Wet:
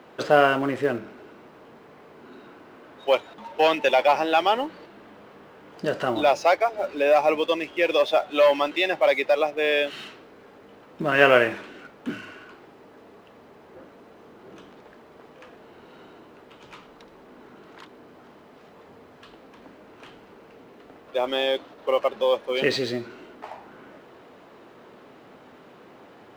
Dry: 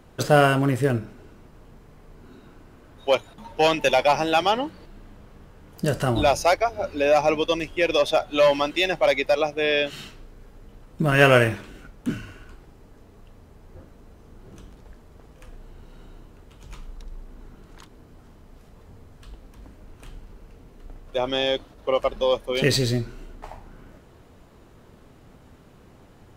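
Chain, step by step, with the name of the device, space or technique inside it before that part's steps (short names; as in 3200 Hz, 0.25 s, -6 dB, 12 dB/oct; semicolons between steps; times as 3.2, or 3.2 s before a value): phone line with mismatched companding (BPF 310–3500 Hz; G.711 law mismatch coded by mu)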